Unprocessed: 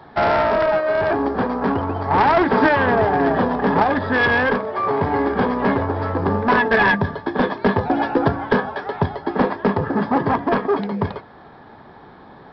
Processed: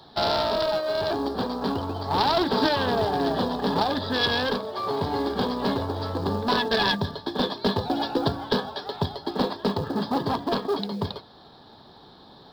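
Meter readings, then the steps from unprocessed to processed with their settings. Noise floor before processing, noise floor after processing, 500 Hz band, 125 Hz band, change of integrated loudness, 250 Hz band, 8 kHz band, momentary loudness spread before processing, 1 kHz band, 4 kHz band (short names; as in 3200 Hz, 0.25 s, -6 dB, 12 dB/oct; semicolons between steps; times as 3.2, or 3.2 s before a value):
-44 dBFS, -50 dBFS, -7.0 dB, -6.5 dB, -6.5 dB, -6.5 dB, n/a, 7 LU, -7.5 dB, +7.0 dB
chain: short-mantissa float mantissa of 6-bit; resonant high shelf 2900 Hz +11 dB, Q 3; gain -6.5 dB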